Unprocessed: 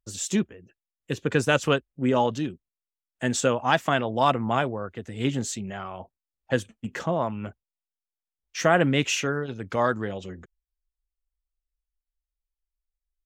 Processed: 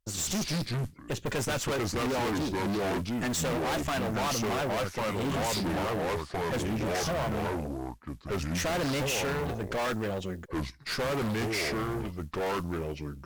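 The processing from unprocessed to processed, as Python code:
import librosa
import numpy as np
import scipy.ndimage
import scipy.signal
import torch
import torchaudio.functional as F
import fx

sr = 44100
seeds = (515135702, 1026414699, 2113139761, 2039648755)

y = fx.mod_noise(x, sr, seeds[0], snr_db=28)
y = fx.echo_pitch(y, sr, ms=91, semitones=-4, count=2, db_per_echo=-3.0)
y = fx.tube_stage(y, sr, drive_db=34.0, bias=0.65)
y = y * 10.0 ** (6.0 / 20.0)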